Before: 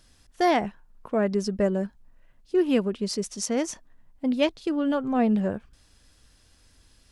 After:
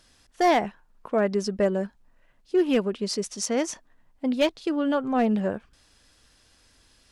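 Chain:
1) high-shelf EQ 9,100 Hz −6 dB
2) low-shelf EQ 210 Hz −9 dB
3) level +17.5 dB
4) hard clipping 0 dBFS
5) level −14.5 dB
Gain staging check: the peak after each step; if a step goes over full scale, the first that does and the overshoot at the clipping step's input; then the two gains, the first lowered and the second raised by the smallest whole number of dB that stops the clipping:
−9.5, −11.0, +6.5, 0.0, −14.5 dBFS
step 3, 6.5 dB
step 3 +10.5 dB, step 5 −7.5 dB

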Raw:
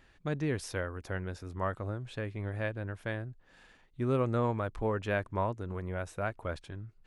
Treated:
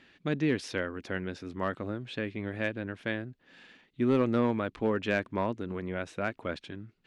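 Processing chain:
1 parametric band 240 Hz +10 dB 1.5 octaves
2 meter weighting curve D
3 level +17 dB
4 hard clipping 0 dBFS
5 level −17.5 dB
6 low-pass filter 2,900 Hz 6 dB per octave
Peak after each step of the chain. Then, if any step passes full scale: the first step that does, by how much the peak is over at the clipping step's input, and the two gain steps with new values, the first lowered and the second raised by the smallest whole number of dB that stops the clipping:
−13.5, −11.5, +5.5, 0.0, −17.5, −17.5 dBFS
step 3, 5.5 dB
step 3 +11 dB, step 5 −11.5 dB

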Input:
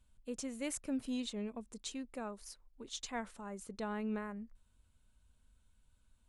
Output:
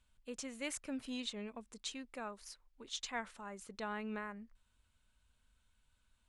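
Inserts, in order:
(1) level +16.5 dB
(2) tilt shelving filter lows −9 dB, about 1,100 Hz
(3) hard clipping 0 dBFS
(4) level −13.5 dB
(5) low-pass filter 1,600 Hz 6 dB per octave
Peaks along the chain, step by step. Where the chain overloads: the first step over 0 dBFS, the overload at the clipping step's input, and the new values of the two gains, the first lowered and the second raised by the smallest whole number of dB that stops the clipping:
−11.0, −2.5, −2.5, −16.0, −26.5 dBFS
no step passes full scale

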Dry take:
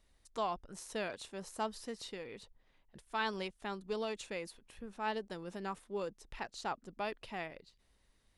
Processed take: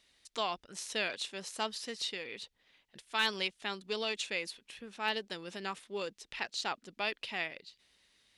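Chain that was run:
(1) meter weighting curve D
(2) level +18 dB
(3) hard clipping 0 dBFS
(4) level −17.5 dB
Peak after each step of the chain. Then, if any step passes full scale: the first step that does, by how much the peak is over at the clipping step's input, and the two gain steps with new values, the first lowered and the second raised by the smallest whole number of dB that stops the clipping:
−14.5, +3.5, 0.0, −17.5 dBFS
step 2, 3.5 dB
step 2 +14 dB, step 4 −13.5 dB

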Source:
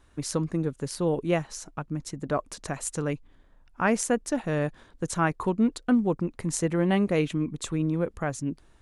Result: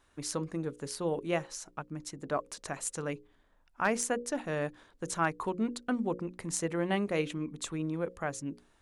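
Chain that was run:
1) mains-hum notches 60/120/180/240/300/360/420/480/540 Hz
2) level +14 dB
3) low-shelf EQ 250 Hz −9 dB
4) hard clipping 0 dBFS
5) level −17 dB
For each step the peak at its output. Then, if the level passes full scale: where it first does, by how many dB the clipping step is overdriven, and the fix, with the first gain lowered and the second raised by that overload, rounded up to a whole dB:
−10.0, +4.0, +4.0, 0.0, −17.0 dBFS
step 2, 4.0 dB
step 2 +10 dB, step 5 −13 dB

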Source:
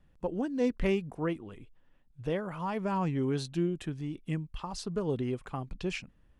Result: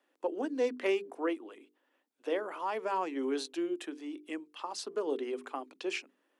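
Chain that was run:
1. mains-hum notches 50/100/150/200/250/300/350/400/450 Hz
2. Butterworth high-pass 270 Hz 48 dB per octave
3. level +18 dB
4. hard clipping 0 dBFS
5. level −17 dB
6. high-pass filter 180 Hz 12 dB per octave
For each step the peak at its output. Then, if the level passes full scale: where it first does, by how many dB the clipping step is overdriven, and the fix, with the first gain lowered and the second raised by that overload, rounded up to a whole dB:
−17.0, −21.0, −3.0, −3.0, −20.0, −20.5 dBFS
no step passes full scale

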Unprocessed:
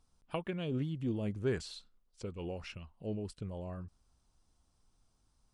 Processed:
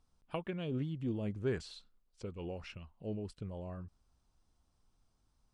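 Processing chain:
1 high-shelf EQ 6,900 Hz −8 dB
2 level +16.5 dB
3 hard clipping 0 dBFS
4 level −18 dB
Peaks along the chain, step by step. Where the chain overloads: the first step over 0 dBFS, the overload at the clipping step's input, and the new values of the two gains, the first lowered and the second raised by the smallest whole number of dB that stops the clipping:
−22.0, −5.5, −5.5, −23.5 dBFS
no step passes full scale

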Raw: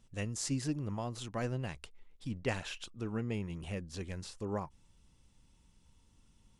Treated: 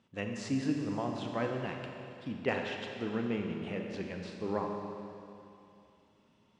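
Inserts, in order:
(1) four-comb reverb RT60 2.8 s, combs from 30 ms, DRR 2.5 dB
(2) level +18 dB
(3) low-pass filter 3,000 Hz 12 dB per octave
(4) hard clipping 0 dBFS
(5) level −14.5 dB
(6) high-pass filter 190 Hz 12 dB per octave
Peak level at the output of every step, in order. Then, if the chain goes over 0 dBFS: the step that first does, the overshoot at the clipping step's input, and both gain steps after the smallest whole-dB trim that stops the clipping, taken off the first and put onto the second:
−20.0, −2.0, −3.0, −3.0, −17.5, −16.0 dBFS
no step passes full scale

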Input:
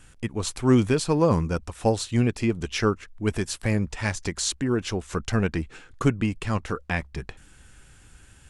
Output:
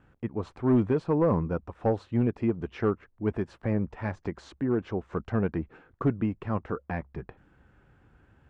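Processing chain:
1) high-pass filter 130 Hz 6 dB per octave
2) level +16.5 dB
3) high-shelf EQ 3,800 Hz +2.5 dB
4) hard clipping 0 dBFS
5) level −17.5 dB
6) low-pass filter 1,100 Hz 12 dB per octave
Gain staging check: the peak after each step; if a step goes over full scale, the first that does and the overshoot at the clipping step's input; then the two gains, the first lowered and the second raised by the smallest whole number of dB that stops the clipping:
−8.0, +8.5, +8.5, 0.0, −17.5, −17.0 dBFS
step 2, 8.5 dB
step 2 +7.5 dB, step 5 −8.5 dB

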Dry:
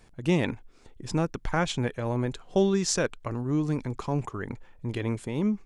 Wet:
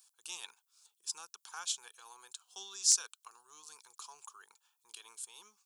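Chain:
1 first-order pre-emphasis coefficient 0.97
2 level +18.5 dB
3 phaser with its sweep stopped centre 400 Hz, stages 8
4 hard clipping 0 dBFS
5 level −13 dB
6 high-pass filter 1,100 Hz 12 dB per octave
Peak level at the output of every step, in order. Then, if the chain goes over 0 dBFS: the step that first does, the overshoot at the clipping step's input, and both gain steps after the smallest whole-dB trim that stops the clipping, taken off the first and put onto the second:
−11.0, +7.5, +7.0, 0.0, −13.0, −11.0 dBFS
step 2, 7.0 dB
step 2 +11.5 dB, step 5 −6 dB

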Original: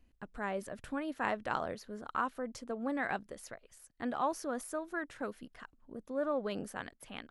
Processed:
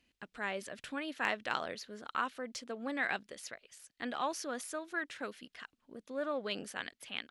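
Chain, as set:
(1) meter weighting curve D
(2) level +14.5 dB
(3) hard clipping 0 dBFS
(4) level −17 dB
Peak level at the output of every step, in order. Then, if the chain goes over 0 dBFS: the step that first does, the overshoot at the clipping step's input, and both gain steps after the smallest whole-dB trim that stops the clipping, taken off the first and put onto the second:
−11.0, +3.5, 0.0, −17.0 dBFS
step 2, 3.5 dB
step 2 +10.5 dB, step 4 −13 dB

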